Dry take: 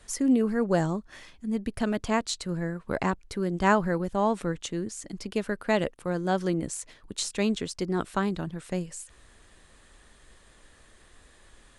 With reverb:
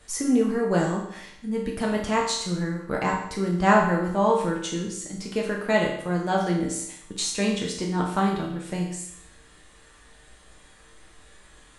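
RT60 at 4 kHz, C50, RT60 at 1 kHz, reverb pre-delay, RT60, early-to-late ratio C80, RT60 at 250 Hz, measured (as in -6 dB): 0.70 s, 4.0 dB, 0.70 s, 7 ms, 0.70 s, 7.5 dB, 0.70 s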